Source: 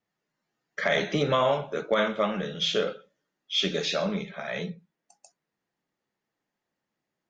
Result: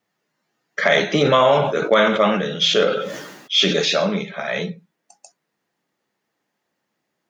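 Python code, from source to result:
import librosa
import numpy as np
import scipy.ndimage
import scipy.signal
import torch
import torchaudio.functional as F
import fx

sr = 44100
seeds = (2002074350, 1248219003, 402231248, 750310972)

y = fx.highpass(x, sr, hz=160.0, slope=6)
y = fx.sustainer(y, sr, db_per_s=49.0, at=(1.15, 3.93))
y = y * librosa.db_to_amplitude(9.0)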